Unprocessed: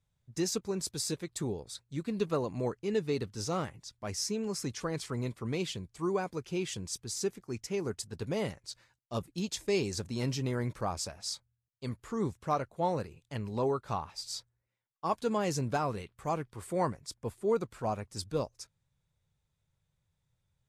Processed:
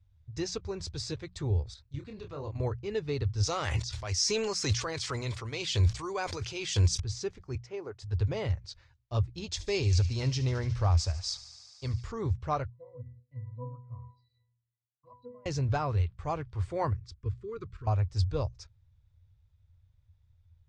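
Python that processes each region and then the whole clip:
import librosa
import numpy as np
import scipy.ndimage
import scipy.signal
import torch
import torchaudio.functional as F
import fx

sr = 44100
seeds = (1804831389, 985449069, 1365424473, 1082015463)

y = fx.chain(x, sr, fx.level_steps(step_db=13),
    fx.doubler(ms=28.0, db=-5.0), at=(1.74, 2.6))
y = fx.chain(y, sr, fx.riaa(side='recording'),
    fx.sustainer(db_per_s=22.0), at=(3.43, 7.0))
y = fx.chain(y, sr, fx.highpass(hz=360.0, slope=12),
    fx.high_shelf(hz=2000.0, db=-11.0), at=(7.55, 8.02))
y = fx.chain(y, sr, fx.high_shelf(hz=5700.0, db=10.0),
    fx.echo_wet_highpass(ms=73, feedback_pct=85, hz=2100.0, wet_db=-16), at=(9.51, 12.12))
y = fx.chain(y, sr, fx.octave_resonator(note='B', decay_s=0.44),
    fx.env_phaser(low_hz=600.0, high_hz=3900.0, full_db=-48.0), at=(12.7, 15.46))
y = fx.chain(y, sr, fx.cheby1_bandstop(low_hz=440.0, high_hz=1100.0, order=3),
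    fx.high_shelf(hz=3400.0, db=-6.5),
    fx.level_steps(step_db=9), at=(16.93, 17.87))
y = scipy.signal.sosfilt(scipy.signal.butter(4, 5800.0, 'lowpass', fs=sr, output='sos'), y)
y = fx.low_shelf_res(y, sr, hz=130.0, db=14.0, q=3.0)
y = fx.hum_notches(y, sr, base_hz=60, count=3)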